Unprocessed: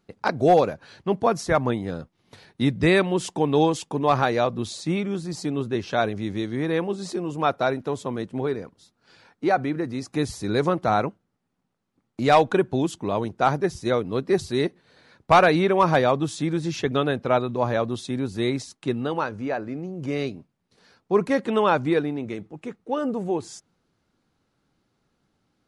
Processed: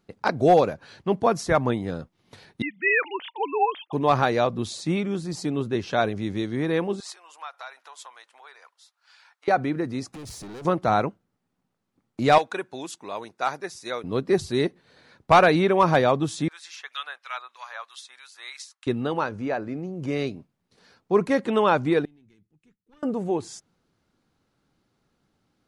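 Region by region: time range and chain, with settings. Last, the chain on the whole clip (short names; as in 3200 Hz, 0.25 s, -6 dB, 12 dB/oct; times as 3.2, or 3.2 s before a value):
2.62–3.93 sine-wave speech + HPF 440 Hz + tilt shelf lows -7.5 dB, about 1100 Hz
7–9.48 compressor 4:1, threshold -30 dBFS + HPF 900 Hz 24 dB/oct
10.13–10.65 compressor 12:1, threshold -27 dBFS + hard clip -37 dBFS
12.38–14.04 HPF 1400 Hz 6 dB/oct + notch 3100 Hz, Q 8.1
16.48–18.87 HPF 1100 Hz 24 dB/oct + harmonic tremolo 3.1 Hz, crossover 1500 Hz
22.05–23.03 half-wave gain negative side -3 dB + tube stage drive 22 dB, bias 0.75 + passive tone stack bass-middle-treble 6-0-2
whole clip: dry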